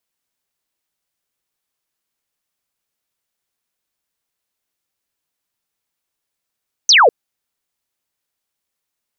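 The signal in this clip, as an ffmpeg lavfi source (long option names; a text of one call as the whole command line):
ffmpeg -f lavfi -i "aevalsrc='0.501*clip(t/0.002,0,1)*clip((0.2-t)/0.002,0,1)*sin(2*PI*6400*0.2/log(420/6400)*(exp(log(420/6400)*t/0.2)-1))':duration=0.2:sample_rate=44100" out.wav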